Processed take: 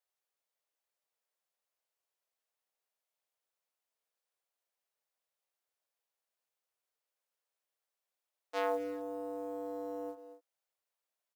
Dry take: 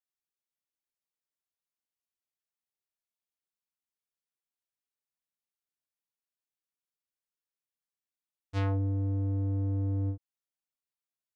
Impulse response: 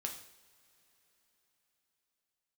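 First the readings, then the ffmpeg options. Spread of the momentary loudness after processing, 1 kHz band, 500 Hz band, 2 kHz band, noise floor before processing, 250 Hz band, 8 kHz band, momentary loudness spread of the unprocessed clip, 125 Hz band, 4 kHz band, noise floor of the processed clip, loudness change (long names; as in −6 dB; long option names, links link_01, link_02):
11 LU, +6.5 dB, +7.0 dB, +2.5 dB, below −85 dBFS, −7.5 dB, can't be measured, 6 LU, below −40 dB, +1.0 dB, below −85 dBFS, −7.5 dB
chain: -filter_complex "[0:a]highpass=frequency=430:width=0.5412,highpass=frequency=430:width=1.3066,highshelf=frequency=2100:gain=-3.5,asplit=2[link_01][link_02];[link_02]alimiter=level_in=10dB:limit=-24dB:level=0:latency=1,volume=-10dB,volume=-1.5dB[link_03];[link_01][link_03]amix=inputs=2:normalize=0,equalizer=frequency=580:width_type=o:width=1.2:gain=5.5,asplit=2[link_04][link_05];[link_05]adelay=230,highpass=300,lowpass=3400,asoftclip=type=hard:threshold=-32.5dB,volume=-12dB[link_06];[link_04][link_06]amix=inputs=2:normalize=0,acrusher=bits=7:mode=log:mix=0:aa=0.000001"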